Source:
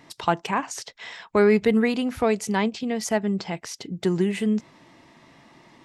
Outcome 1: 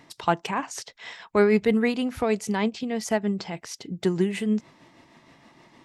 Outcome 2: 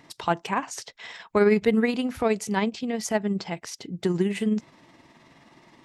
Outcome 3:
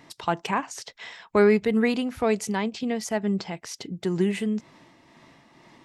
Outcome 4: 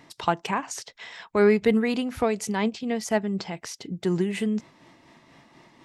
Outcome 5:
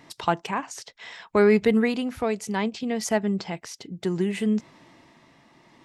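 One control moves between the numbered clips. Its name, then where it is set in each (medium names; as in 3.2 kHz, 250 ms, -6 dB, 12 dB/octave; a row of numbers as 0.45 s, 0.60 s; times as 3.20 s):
tremolo, rate: 6.4 Hz, 19 Hz, 2.1 Hz, 4.1 Hz, 0.64 Hz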